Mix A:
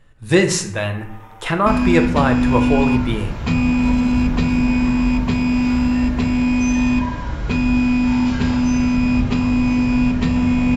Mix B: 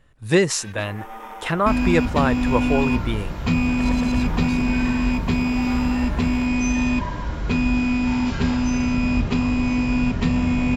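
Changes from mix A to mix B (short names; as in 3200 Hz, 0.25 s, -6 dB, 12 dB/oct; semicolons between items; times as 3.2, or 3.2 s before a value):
first sound +7.0 dB; reverb: off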